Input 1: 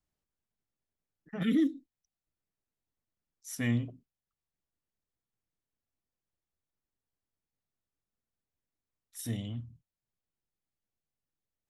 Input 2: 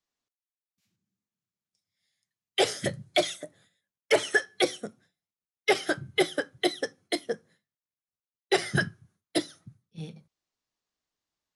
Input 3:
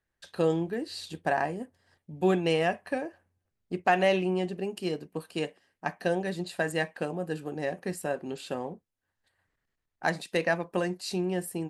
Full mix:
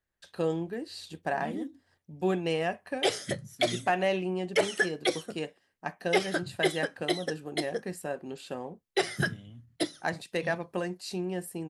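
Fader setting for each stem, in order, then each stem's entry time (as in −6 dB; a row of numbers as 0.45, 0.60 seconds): −10.5, −3.0, −3.5 decibels; 0.00, 0.45, 0.00 seconds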